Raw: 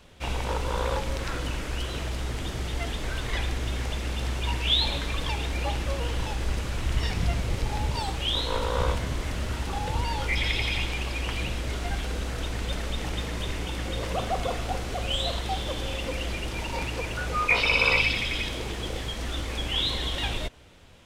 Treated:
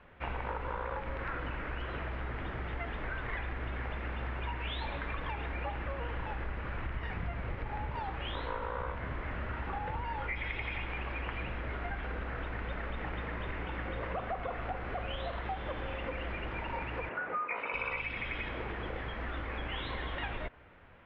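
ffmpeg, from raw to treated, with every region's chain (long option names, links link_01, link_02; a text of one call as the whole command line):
ffmpeg -i in.wav -filter_complex "[0:a]asettb=1/sr,asplit=3[link_01][link_02][link_03];[link_01]atrim=end=17.094[link_04];[link_02]atrim=start=17.09:end=17.74,asetpts=PTS-STARTPTS,afade=type=in:duration=0.004:curve=qsin,afade=type=out:start_time=0.646:duration=0.004:curve=qsin,highpass=83,acrossover=split=180 2400:gain=0.0891 1 0.178[link_05][link_06][link_07];[link_05][link_06][link_07]amix=inputs=3:normalize=0[link_08];[link_03]atrim=start=17.736[link_09];[link_04][link_08]acrossfade=duration=0.004:curve1=hsin:curve2=qsin[link_10];[link_10][link_09]acrossfade=duration=0.004:curve1=qsin:curve2=hsin,lowpass=frequency=1900:width=0.5412,lowpass=frequency=1900:width=1.3066,tiltshelf=frequency=970:gain=-6,acompressor=threshold=-33dB:ratio=6" out.wav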